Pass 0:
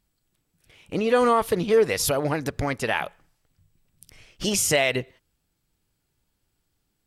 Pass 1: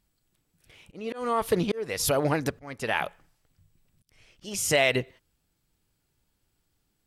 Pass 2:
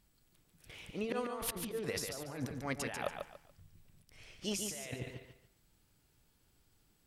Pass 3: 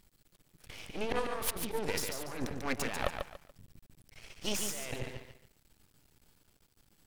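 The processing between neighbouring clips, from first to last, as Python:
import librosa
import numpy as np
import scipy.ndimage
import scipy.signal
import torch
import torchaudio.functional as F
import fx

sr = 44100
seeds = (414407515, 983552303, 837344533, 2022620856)

y1 = fx.auto_swell(x, sr, attack_ms=437.0)
y2 = fx.over_compress(y1, sr, threshold_db=-36.0, ratio=-1.0)
y2 = fx.echo_feedback(y2, sr, ms=143, feedback_pct=27, wet_db=-6.0)
y2 = y2 * 10.0 ** (-5.5 / 20.0)
y3 = np.maximum(y2, 0.0)
y3 = y3 * 10.0 ** (8.0 / 20.0)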